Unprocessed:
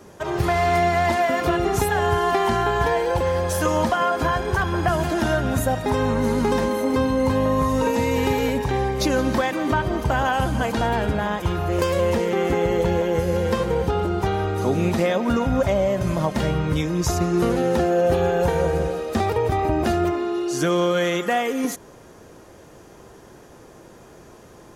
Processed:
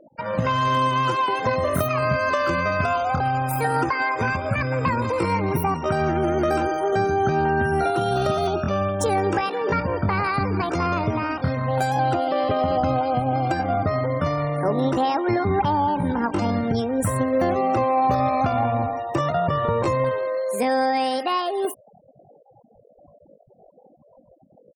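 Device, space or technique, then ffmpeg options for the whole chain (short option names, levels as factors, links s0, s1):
chipmunk voice: -af "afftfilt=real='re*gte(hypot(re,im),0.0282)':imag='im*gte(hypot(re,im),0.0282)':win_size=1024:overlap=0.75,equalizer=f=2000:w=0.68:g=-5.5,asetrate=66075,aresample=44100,atempo=0.66742"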